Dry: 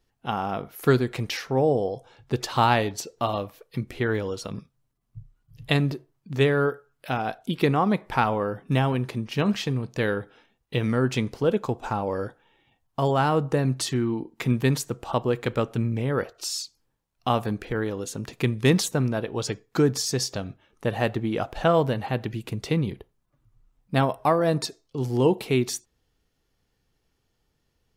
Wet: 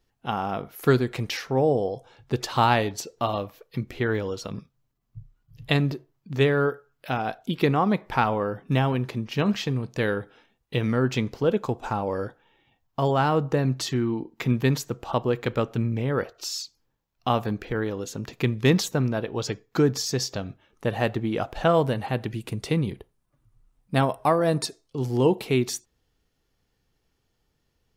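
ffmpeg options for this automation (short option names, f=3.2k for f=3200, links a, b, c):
-af "asetnsamples=n=441:p=0,asendcmd='3.19 equalizer g -10;9.75 equalizer g -2;10.81 equalizer g -13;11.59 equalizer g -3;12.25 equalizer g -14;20.48 equalizer g -3.5;21.69 equalizer g 6;24.97 equalizer g -2.5',equalizer=f=9.3k:t=o:w=0.3:g=-3"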